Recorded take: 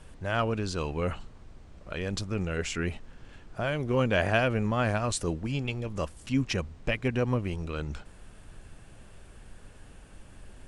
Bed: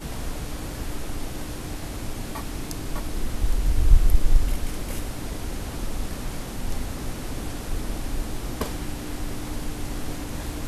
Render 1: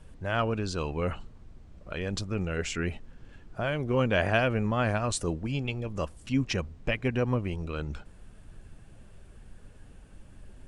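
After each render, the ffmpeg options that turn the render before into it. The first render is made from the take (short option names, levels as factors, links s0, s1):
-af "afftdn=nr=6:nf=-51"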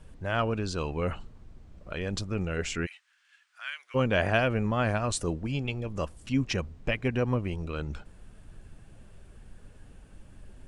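-filter_complex "[0:a]asplit=3[s0][s1][s2];[s0]afade=t=out:st=2.85:d=0.02[s3];[s1]highpass=f=1500:w=0.5412,highpass=f=1500:w=1.3066,afade=t=in:st=2.85:d=0.02,afade=t=out:st=3.94:d=0.02[s4];[s2]afade=t=in:st=3.94:d=0.02[s5];[s3][s4][s5]amix=inputs=3:normalize=0"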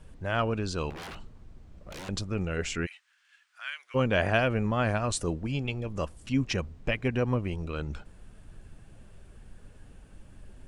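-filter_complex "[0:a]asettb=1/sr,asplit=3[s0][s1][s2];[s0]atrim=end=0.904[s3];[s1]atrim=start=0.9:end=2.09,asetpts=PTS-STARTPTS,afade=t=in:d=0.004:c=qsin,afade=t=out:st=1.186:d=0.004:c=qsin,aeval=exprs='0.0158*(abs(mod(val(0)/0.0158+3,4)-2)-1)':c=same[s4];[s2]atrim=start=2.086[s5];[s3][s4]acrossfade=d=0.004:c1=hsin:c2=qsin[s6];[s6][s5]acrossfade=d=0.004:c1=qsin:c2=hsin"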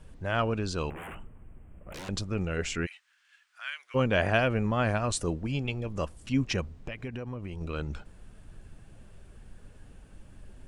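-filter_complex "[0:a]asettb=1/sr,asplit=3[s0][s1][s2];[s0]atrim=end=0.904[s3];[s1]atrim=start=0.9:end=1.94,asetpts=PTS-STARTPTS,afade=t=in:d=0.004:c=qsin,afade=t=out:st=1.036:d=0.004:c=qsin,asuperstop=centerf=4900:order=8:qfactor=0.96[s4];[s2]atrim=start=1.936[s5];[s3][s4]acrossfade=d=0.004:c1=hsin:c2=qsin[s6];[s6][s5]acrossfade=d=0.004:c1=qsin:c2=hsin,asettb=1/sr,asplit=3[s7][s8][s9];[s7]atrim=end=6.714[s10];[s8]atrim=start=6.71:end=7.61,asetpts=PTS-STARTPTS,afade=t=in:d=0.004:c=qsin,afade=t=out:st=0.896:d=0.004:c=qsin,acompressor=threshold=0.0224:ratio=6:attack=3.2:release=140:knee=1:detection=peak[s11];[s9]atrim=start=7.606[s12];[s10][s11]acrossfade=d=0.004:c1=hsin:c2=qsin[s13];[s13][s12]acrossfade=d=0.004:c1=qsin:c2=hsin"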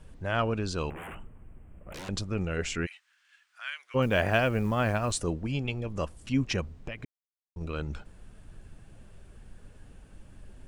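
-filter_complex "[0:a]asettb=1/sr,asplit=3[s0][s1][s2];[s0]atrim=end=4.024[s3];[s1]atrim=start=4.02:end=5.21,asetpts=PTS-STARTPTS,afade=t=in:d=0.004:c=qsin,afade=t=out:st=1.186:d=0.004:c=qsin,acrusher=bits=8:mode=log:mix=0:aa=0.000001[s4];[s2]atrim=start=5.206[s5];[s3][s4]acrossfade=d=0.004:c1=hsin:c2=qsin[s6];[s6][s5]acrossfade=d=0.004:c1=qsin:c2=hsin,asplit=3[s7][s8][s9];[s7]atrim=end=7.05,asetpts=PTS-STARTPTS,afade=t=out:st=7.046:d=0.004:c=hsin[s10];[s8]atrim=start=7.05:end=7.56,asetpts=PTS-STARTPTS,volume=0[s11];[s9]atrim=start=7.56,asetpts=PTS-STARTPTS,afade=t=in:d=0.004:c=hsin[s12];[s10][s11][s12]concat=n=3:v=0:a=1"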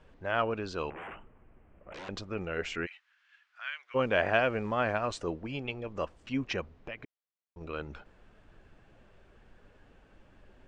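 -af "lowpass=f=7100:w=0.5412,lowpass=f=7100:w=1.3066,bass=f=250:g=-11,treble=f=4000:g=-11"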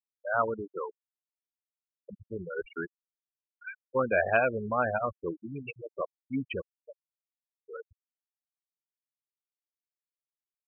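-af "afftfilt=real='re*gte(hypot(re,im),0.0708)':imag='im*gte(hypot(re,im),0.0708)':win_size=1024:overlap=0.75,adynamicequalizer=threshold=0.00794:dfrequency=1100:dqfactor=0.85:tfrequency=1100:tqfactor=0.85:attack=5:release=100:ratio=0.375:range=2:mode=boostabove:tftype=bell"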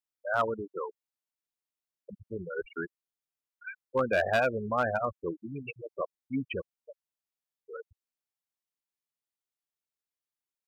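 -af "asoftclip=type=hard:threshold=0.119"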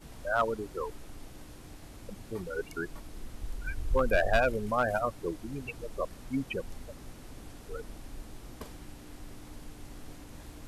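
-filter_complex "[1:a]volume=0.168[s0];[0:a][s0]amix=inputs=2:normalize=0"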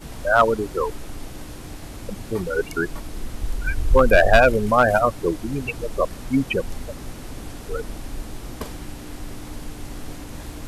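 -af "volume=3.98,alimiter=limit=0.794:level=0:latency=1"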